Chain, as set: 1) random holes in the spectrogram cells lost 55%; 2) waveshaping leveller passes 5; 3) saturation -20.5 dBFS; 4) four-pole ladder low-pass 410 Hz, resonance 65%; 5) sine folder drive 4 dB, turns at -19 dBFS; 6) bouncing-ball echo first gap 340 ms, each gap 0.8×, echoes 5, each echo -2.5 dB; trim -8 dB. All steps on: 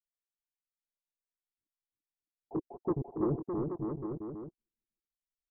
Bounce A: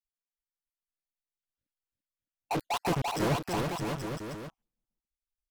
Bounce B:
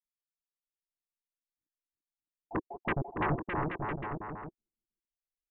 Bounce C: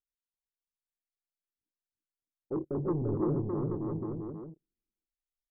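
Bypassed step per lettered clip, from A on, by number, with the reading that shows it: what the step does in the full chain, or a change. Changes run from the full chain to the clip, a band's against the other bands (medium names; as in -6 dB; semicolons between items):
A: 4, 1 kHz band +10.5 dB; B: 3, distortion -12 dB; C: 1, 125 Hz band +3.5 dB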